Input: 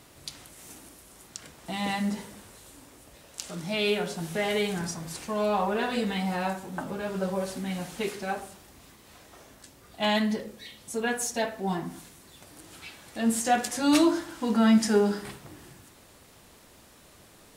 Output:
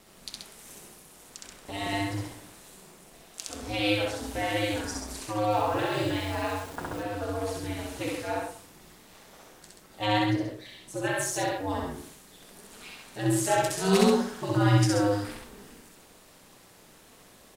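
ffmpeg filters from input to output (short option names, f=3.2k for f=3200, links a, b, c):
-filter_complex "[0:a]bandreject=f=60:t=h:w=6,bandreject=f=120:t=h:w=6,bandreject=f=180:t=h:w=6,bandreject=f=240:t=h:w=6,aeval=exprs='val(0)*sin(2*PI*100*n/s)':c=same,equalizer=f=75:w=1.9:g=-5,aecho=1:1:64.14|131.2:0.891|0.562,asettb=1/sr,asplit=3[a][b][c];[a]atrim=end=5.524[d];[b]atrim=start=5.52:end=7.03,asetpts=PTS-STARTPTS,afade=t=in:d=0.004:c=qsin,afade=t=out:st=1.506:d=0.004:c=qsin,aeval=exprs='val(0)*gte(abs(val(0)),0.01)':c=same[e];[c]atrim=start=7.026[f];[d][e]acrossfade=d=0.004:c1=hsin:c2=qsin[g];[g][f]acrossfade=d=0.004:c1=qsin:c2=hsin,asettb=1/sr,asplit=3[h][i][j];[h]atrim=end=10.044[k];[i]atrim=start=10.04:end=11.06,asetpts=PTS-STARTPTS,afade=t=in:d=0.004:c=qsin,afade=t=out:st=1.016:d=0.004:c=qsin,highshelf=f=4.9k:g=-5[l];[j]atrim=start=11.056[m];[k][l]acrossfade=d=0.004:c1=hsin:c2=qsin[n];[n][m]acrossfade=d=0.004:c1=qsin:c2=hsin"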